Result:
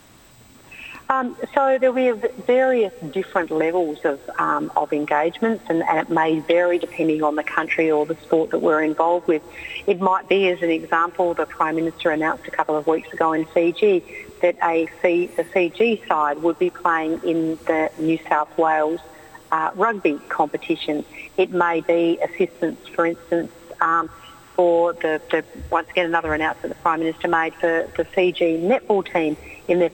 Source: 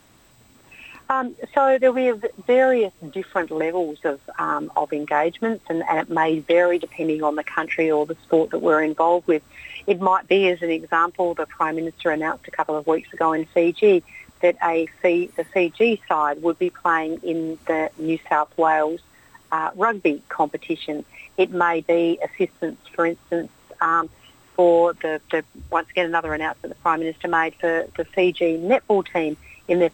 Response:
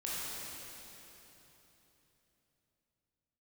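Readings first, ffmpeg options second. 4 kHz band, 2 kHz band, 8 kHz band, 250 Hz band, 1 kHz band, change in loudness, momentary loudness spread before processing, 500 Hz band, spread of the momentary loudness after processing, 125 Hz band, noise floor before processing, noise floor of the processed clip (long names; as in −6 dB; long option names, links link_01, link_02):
+1.5 dB, +1.0 dB, can't be measured, +1.5 dB, +0.5 dB, +1.0 dB, 9 LU, +0.5 dB, 6 LU, +2.0 dB, −54 dBFS, −45 dBFS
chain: -filter_complex "[0:a]acompressor=threshold=-21dB:ratio=2.5,asplit=2[link_01][link_02];[1:a]atrim=start_sample=2205,asetrate=66150,aresample=44100,adelay=147[link_03];[link_02][link_03]afir=irnorm=-1:irlink=0,volume=-25dB[link_04];[link_01][link_04]amix=inputs=2:normalize=0,volume=5dB"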